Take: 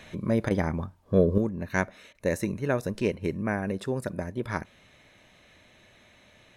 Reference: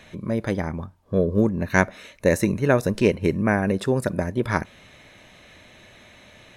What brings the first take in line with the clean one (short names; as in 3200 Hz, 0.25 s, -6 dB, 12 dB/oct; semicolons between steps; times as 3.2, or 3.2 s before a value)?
interpolate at 0.49/2.13, 16 ms; gain 0 dB, from 1.38 s +8 dB